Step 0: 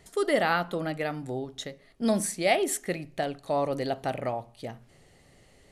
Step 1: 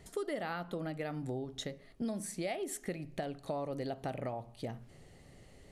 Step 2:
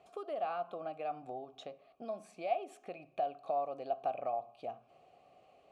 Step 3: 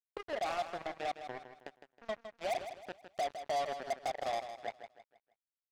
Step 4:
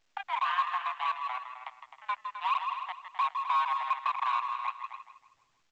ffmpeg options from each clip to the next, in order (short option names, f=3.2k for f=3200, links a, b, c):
-af "lowshelf=f=460:g=6,acompressor=threshold=-32dB:ratio=6,volume=-3dB"
-filter_complex "[0:a]asplit=3[a][b][c];[a]bandpass=f=730:t=q:w=8,volume=0dB[d];[b]bandpass=f=1.09k:t=q:w=8,volume=-6dB[e];[c]bandpass=f=2.44k:t=q:w=8,volume=-9dB[f];[d][e][f]amix=inputs=3:normalize=0,volume=10dB"
-filter_complex "[0:a]asoftclip=type=hard:threshold=-29.5dB,acrusher=bits=5:mix=0:aa=0.5,asplit=2[a][b];[b]aecho=0:1:159|318|477|636:0.316|0.117|0.0433|0.016[c];[a][c]amix=inputs=2:normalize=0"
-af "aecho=1:1:160.3|259.5:0.282|0.316,highpass=f=320:t=q:w=0.5412,highpass=f=320:t=q:w=1.307,lowpass=f=3.2k:t=q:w=0.5176,lowpass=f=3.2k:t=q:w=0.7071,lowpass=f=3.2k:t=q:w=1.932,afreqshift=380,volume=6dB" -ar 16000 -c:a pcm_alaw